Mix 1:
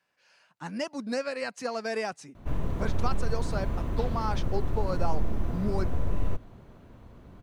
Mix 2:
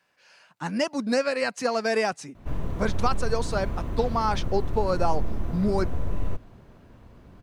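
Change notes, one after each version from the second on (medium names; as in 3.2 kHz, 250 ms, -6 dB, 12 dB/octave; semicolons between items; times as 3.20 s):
speech +7.0 dB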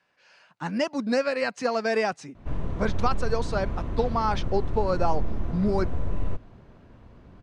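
master: add distance through air 72 m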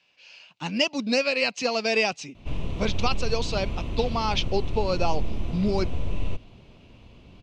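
speech: add low-pass 7.2 kHz 24 dB/octave; master: add resonant high shelf 2.1 kHz +7.5 dB, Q 3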